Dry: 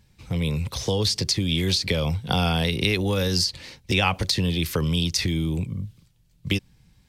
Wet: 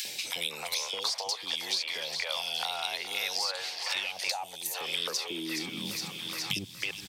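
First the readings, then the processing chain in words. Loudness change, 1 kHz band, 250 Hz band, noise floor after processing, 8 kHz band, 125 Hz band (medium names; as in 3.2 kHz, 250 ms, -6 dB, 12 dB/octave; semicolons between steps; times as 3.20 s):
-8.0 dB, -6.5 dB, -17.0 dB, -44 dBFS, -3.5 dB, -26.5 dB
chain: reverse; compression 4:1, threshold -40 dBFS, peak gain reduction 19 dB; reverse; three bands offset in time highs, lows, mids 50/320 ms, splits 450/2600 Hz; high-pass sweep 740 Hz -> 67 Hz, 4.70–7.03 s; in parallel at -8 dB: saturation -36 dBFS, distortion -11 dB; on the sum: tilt EQ +3.5 dB/octave; thinning echo 418 ms, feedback 70%, high-pass 470 Hz, level -15 dB; time-frequency box 4.31–4.74 s, 950–5800 Hz -12 dB; treble shelf 6.1 kHz -11 dB; three bands compressed up and down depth 100%; trim +6 dB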